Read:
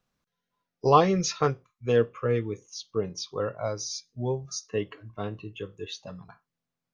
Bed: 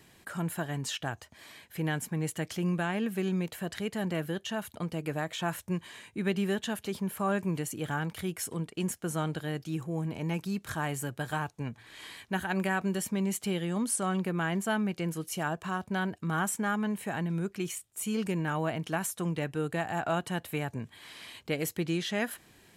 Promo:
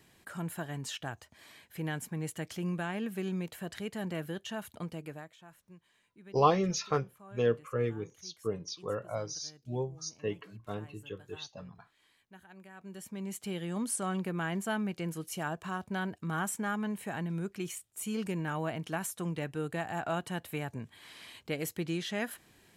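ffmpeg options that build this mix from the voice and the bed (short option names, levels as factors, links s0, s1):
-filter_complex "[0:a]adelay=5500,volume=0.531[s0];[1:a]volume=5.62,afade=t=out:st=4.84:d=0.52:silence=0.11885,afade=t=in:st=12.73:d=1.08:silence=0.105925[s1];[s0][s1]amix=inputs=2:normalize=0"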